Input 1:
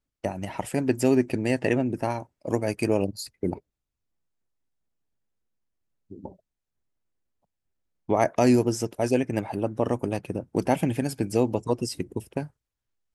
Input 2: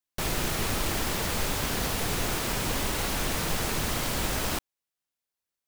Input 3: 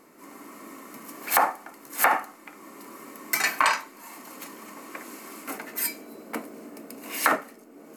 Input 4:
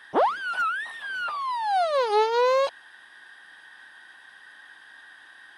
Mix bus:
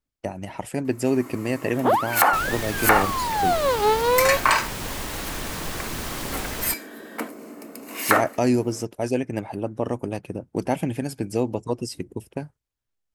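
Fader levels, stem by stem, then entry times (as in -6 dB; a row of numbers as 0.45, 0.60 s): -1.0, -2.5, +2.5, +1.5 dB; 0.00, 2.15, 0.85, 1.70 s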